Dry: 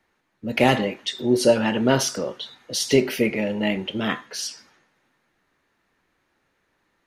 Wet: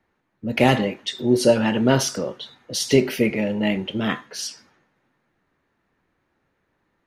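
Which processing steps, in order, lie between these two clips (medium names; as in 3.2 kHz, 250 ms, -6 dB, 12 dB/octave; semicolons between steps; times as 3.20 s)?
peaking EQ 110 Hz +4 dB 2.3 oct; tape noise reduction on one side only decoder only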